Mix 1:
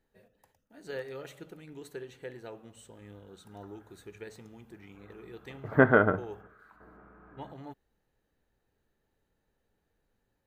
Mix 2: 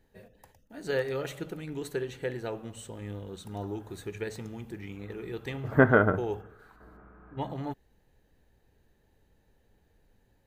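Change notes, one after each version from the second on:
first voice +8.5 dB; master: add low shelf 94 Hz +9 dB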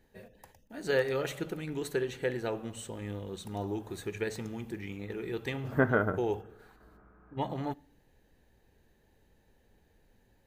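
second voice -6.0 dB; reverb: on, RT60 0.70 s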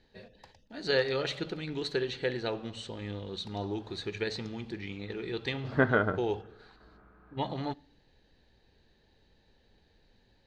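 second voice: remove air absorption 180 m; master: add synth low-pass 4300 Hz, resonance Q 3.8

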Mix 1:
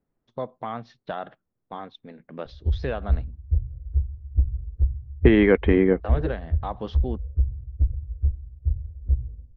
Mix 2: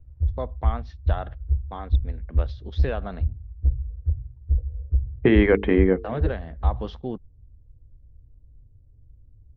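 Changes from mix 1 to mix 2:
second voice: add notches 50/100/150/200/250/300/350/400/450 Hz; background: entry -2.45 s

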